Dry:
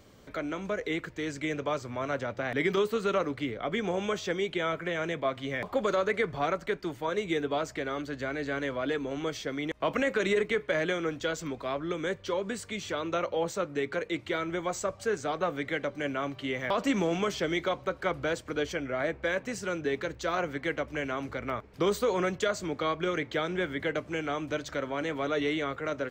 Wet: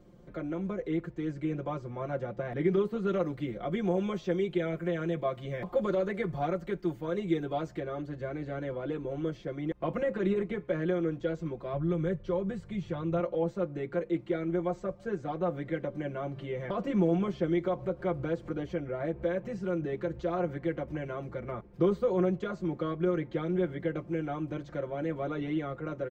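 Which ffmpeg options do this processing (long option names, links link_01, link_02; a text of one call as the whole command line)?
ffmpeg -i in.wav -filter_complex "[0:a]asettb=1/sr,asplit=3[link_01][link_02][link_03];[link_01]atrim=end=3.074[link_04];[link_02]atrim=start=3.07:end=7.8,asetpts=PTS-STARTPTS,afade=type=in:duration=0.004:curve=qsin,afade=type=out:start_time=4.726:duration=0.004:curve=qsin,aemphasis=mode=production:type=75kf[link_05];[link_03]atrim=start=7.796[link_06];[link_04][link_05]acrossfade=duration=0.004:curve1=hsin:curve2=qsin[link_07];[link_07][link_06]acrossfade=duration=0.004:curve1=qsin:curve2=hsin,asettb=1/sr,asplit=3[link_08][link_09][link_10];[link_08]atrim=end=11.734[link_11];[link_09]atrim=start=11.73:end=13.2,asetpts=PTS-STARTPTS,afade=type=in:duration=0.004:curve=qsin,afade=type=out:start_time=1.466:duration=0.004:curve=qsin,lowshelf=frequency=180:width_type=q:width=1.5:gain=8[link_12];[link_10]atrim=start=13.196[link_13];[link_11][link_12]acrossfade=duration=0.004:curve1=hsin:curve2=qsin[link_14];[link_14][link_13]acrossfade=duration=0.004:curve1=qsin:curve2=hsin,asettb=1/sr,asplit=3[link_15][link_16][link_17];[link_15]atrim=end=15.484[link_18];[link_16]atrim=start=15.48:end=21.1,asetpts=PTS-STARTPTS,afade=type=in:duration=0.004:curve=qsin,afade=type=out:start_time=5.616:duration=0.004:curve=qsin,acompressor=mode=upward:threshold=-31dB:ratio=2.5:attack=3.2:release=140:knee=2.83:detection=peak[link_19];[link_17]atrim=start=21.096[link_20];[link_18][link_19]acrossfade=duration=0.004:curve1=hsin:curve2=qsin[link_21];[link_21][link_20]acrossfade=duration=0.004:curve1=qsin:curve2=hsin,acrossover=split=4500[link_22][link_23];[link_23]acompressor=threshold=-53dB:ratio=4:attack=1:release=60[link_24];[link_22][link_24]amix=inputs=2:normalize=0,tiltshelf=frequency=970:gain=9.5,aecho=1:1:5.7:0.98,volume=-9dB" out.wav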